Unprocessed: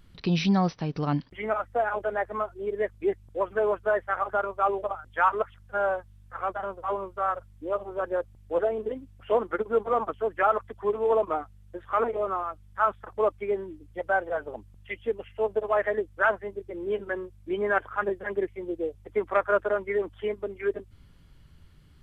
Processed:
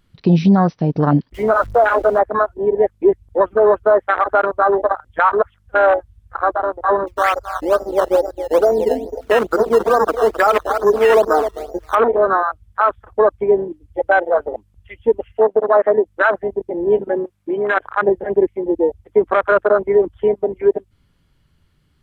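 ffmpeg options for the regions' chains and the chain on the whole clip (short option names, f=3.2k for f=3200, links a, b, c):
-filter_complex "[0:a]asettb=1/sr,asplit=3[a][b][c];[a]atrim=end=1.344[d];[b]atrim=start=1.34:end=2.19,asetpts=PTS-STARTPTS,afade=t=in:d=0.004:c=qsin,afade=t=out:st=0.846:d=0.004:c=qsin,aeval=exprs='val(0)+0.5*0.015*sgn(val(0))':c=same,bandreject=f=790:w=7.1[e];[c]atrim=start=2.186[f];[d][e]acrossfade=d=0.004:c1=hsin:c2=qsin[g];[g][f]acrossfade=d=0.004:c1=qsin:c2=hsin,asettb=1/sr,asplit=3[h][i][j];[h]atrim=end=7.074[k];[i]atrim=start=7.07:end=11.95,asetpts=PTS-STARTPTS,afade=t=in:d=0.004:c=qsin,afade=t=out:st=4.876:d=0.004:c=qsin,aecho=1:1:262|524|786:0.316|0.0759|0.0182,atrim=end_sample=215208,acrusher=samples=13:mix=1:aa=0.000001:lfo=1:lforange=13:lforate=2.3[l];[j]atrim=start=11.946[m];[k][l]acrossfade=d=0.004:c1=hsin:c2=qsin[n];[n][m]acrossfade=d=0.004:c1=qsin:c2=hsin,asettb=1/sr,asplit=3[o][p][q];[o]atrim=end=15.414[r];[p]atrim=start=15.41:end=16.06,asetpts=PTS-STARTPTS,afade=t=in:d=0.004:c=qsin,afade=t=out:st=0.646:d=0.004:c=qsin,highshelf=f=4.8k:g=-8.5,bandreject=f=50:t=h:w=6,bandreject=f=100:t=h:w=6,bandreject=f=150:t=h:w=6,bandreject=f=200:t=h:w=6,bandreject=f=250:t=h:w=6,bandreject=f=300:t=h:w=6[s];[q]atrim=start=16.056[t];[r][s]acrossfade=d=0.004:c1=hsin:c2=qsin[u];[u][t]acrossfade=d=0.004:c1=qsin:c2=hsin,asettb=1/sr,asplit=3[v][w][x];[v]atrim=end=17.244[y];[w]atrim=start=17.24:end=17.77,asetpts=PTS-STARTPTS,afade=t=in:d=0.004:c=qsin,afade=t=out:st=0.526:d=0.004:c=qsin,highpass=f=200:p=1,acompressor=threshold=-32dB:ratio=5:attack=3.2:release=140:knee=1:detection=peak,equalizer=f=1.3k:t=o:w=2.1:g=6[z];[x]atrim=start=17.766[aa];[y][z]acrossfade=d=0.004:c1=hsin:c2=qsin[ab];[ab][aa]acrossfade=d=0.004:c1=qsin:c2=hsin,afwtdn=0.0355,lowshelf=f=110:g=-5.5,alimiter=level_in=18dB:limit=-1dB:release=50:level=0:latency=1,volume=-3.5dB"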